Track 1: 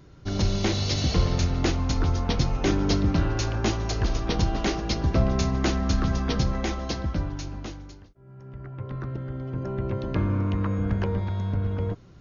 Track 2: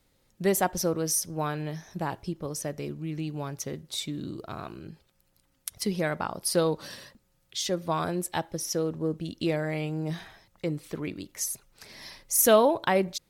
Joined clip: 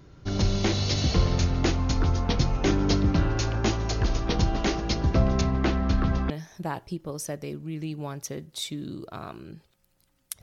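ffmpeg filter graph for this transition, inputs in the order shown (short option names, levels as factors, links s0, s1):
-filter_complex "[0:a]asettb=1/sr,asplit=3[s0][s1][s2];[s0]atrim=end=5.414[s3];[s1]atrim=start=5.41:end=6.3,asetpts=PTS-STARTPTS,afade=t=in:d=0.004:c=qsin,afade=t=out:st=0.886:d=0.004:c=qsin,lowpass=3500[s4];[s2]atrim=start=6.296[s5];[s3][s4]acrossfade=d=0.004:c1=hsin:c2=qsin[s6];[s6][s5]acrossfade=d=0.004:c1=qsin:c2=hsin,apad=whole_dur=10.42,atrim=end=10.42,atrim=end=6.302[s7];[1:a]atrim=start=1.658:end=5.78[s8];[s7][s8]acrossfade=d=0.004:c1=hsin:c2=hsin"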